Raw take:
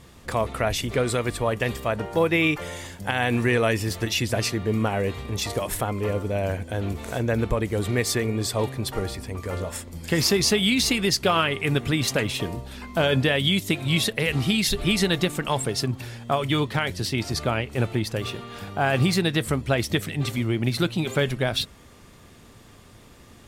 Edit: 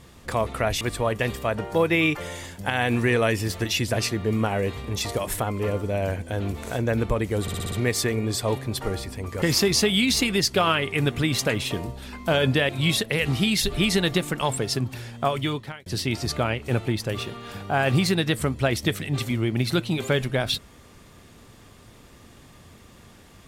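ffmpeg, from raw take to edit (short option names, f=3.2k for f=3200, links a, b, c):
-filter_complex "[0:a]asplit=10[a][b][c][d][e][f][g][h][i][j];[a]atrim=end=0.812[k];[b]atrim=start=1.218:end=7.892[l];[c]atrim=start=7.828:end=7.892[m];[d]atrim=start=7.828:end=7.892[n];[e]atrim=start=7.828:end=7.892[o];[f]atrim=start=7.828:end=7.892[p];[g]atrim=start=7.828:end=9.532[q];[h]atrim=start=10.108:end=13.382[r];[i]atrim=start=13.758:end=16.93,asetpts=PTS-STARTPTS,afade=t=out:st=2.602:d=0.57[s];[j]atrim=start=16.93,asetpts=PTS-STARTPTS,afade=t=in:d=0.004:c=hsin[t];[k][l]acrossfade=d=0.004:c1=hsin:c2=hsin[u];[u][m]acrossfade=d=0.004:c1=hsin:c2=hsin[v];[v][n]acrossfade=d=0.004:c1=hsin:c2=hsin[w];[w][o]acrossfade=d=0.004:c1=hsin:c2=hsin[x];[x][p]acrossfade=d=0.004:c1=hsin:c2=hsin[y];[y][q]acrossfade=d=0.004:c1=hsin:c2=hsin[z];[z][r]acrossfade=d=0.004:c1=hsin:c2=hsin[aa];[s][t]concat=n=2:v=0:a=1[ab];[aa][ab]acrossfade=d=0.004:c1=hsin:c2=hsin"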